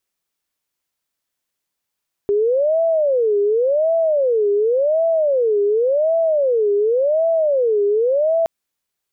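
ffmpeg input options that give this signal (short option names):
-f lavfi -i "aevalsrc='0.211*sin(2*PI*(533.5*t-128.5/(2*PI*0.9)*sin(2*PI*0.9*t)))':d=6.17:s=44100"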